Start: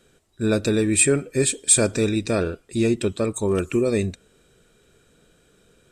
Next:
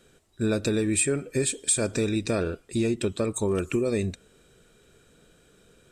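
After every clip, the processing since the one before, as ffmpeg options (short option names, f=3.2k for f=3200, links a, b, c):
-af "acompressor=threshold=-23dB:ratio=3"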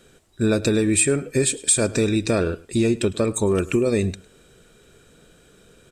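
-af "aecho=1:1:105:0.0841,volume=5.5dB"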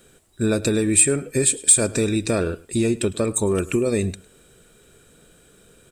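-af "aexciter=amount=2.5:drive=4:freq=7.9k,volume=-1dB"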